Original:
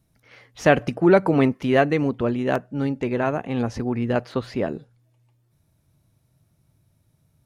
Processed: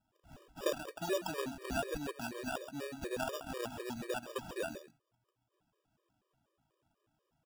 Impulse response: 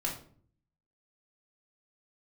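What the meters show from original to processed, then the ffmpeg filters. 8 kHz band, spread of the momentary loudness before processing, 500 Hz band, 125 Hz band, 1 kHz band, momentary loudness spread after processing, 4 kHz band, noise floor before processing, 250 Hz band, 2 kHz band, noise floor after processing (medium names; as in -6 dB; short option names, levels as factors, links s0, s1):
no reading, 10 LU, -17.5 dB, -24.0 dB, -15.5 dB, 6 LU, -7.0 dB, -67 dBFS, -21.5 dB, -15.5 dB, -84 dBFS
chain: -filter_complex "[0:a]lowpass=f=1200:p=1,aderivative,acompressor=threshold=0.00501:ratio=3,acrusher=samples=21:mix=1:aa=0.000001,asplit=2[s0][s1];[s1]aecho=0:1:132:0.282[s2];[s0][s2]amix=inputs=2:normalize=0,afftfilt=real='re*gt(sin(2*PI*4.1*pts/sr)*(1-2*mod(floor(b*sr/1024/320),2)),0)':imag='im*gt(sin(2*PI*4.1*pts/sr)*(1-2*mod(floor(b*sr/1024/320),2)),0)':win_size=1024:overlap=0.75,volume=5.31"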